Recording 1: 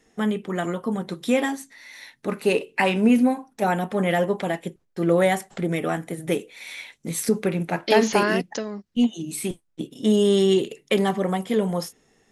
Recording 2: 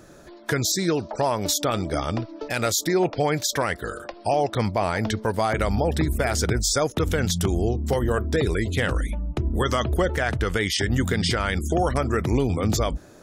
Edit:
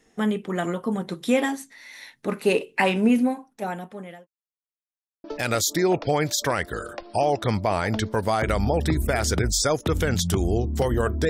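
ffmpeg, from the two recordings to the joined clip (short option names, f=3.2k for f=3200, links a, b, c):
-filter_complex "[0:a]apad=whole_dur=11.29,atrim=end=11.29,asplit=2[a][b];[a]atrim=end=4.27,asetpts=PTS-STARTPTS,afade=t=out:st=2.84:d=1.43[c];[b]atrim=start=4.27:end=5.24,asetpts=PTS-STARTPTS,volume=0[d];[1:a]atrim=start=2.35:end=8.4,asetpts=PTS-STARTPTS,afade=t=in:d=0.004:c=hsin[e];[c][d][e]concat=n=3:v=0:a=1"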